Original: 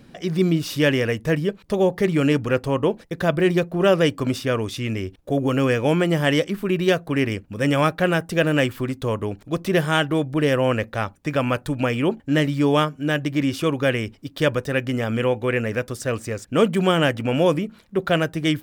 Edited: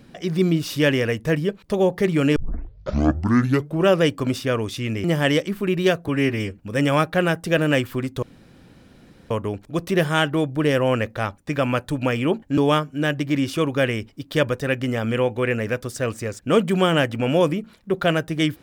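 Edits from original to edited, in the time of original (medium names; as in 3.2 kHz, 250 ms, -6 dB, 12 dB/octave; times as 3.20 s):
2.36 s: tape start 1.52 s
5.04–6.06 s: delete
7.10–7.43 s: stretch 1.5×
9.08 s: insert room tone 1.08 s
12.35–12.63 s: delete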